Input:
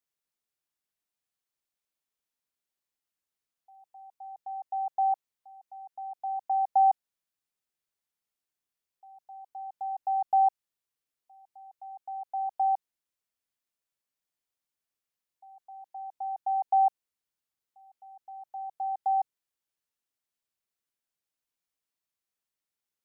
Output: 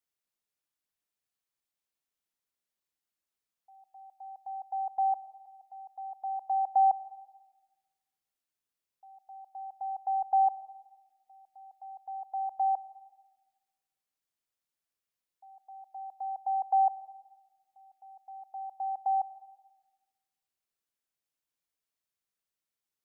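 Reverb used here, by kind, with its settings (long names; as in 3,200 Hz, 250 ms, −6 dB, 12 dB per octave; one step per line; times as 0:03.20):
comb and all-pass reverb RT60 1.2 s, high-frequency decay 0.35×, pre-delay 60 ms, DRR 17 dB
level −1.5 dB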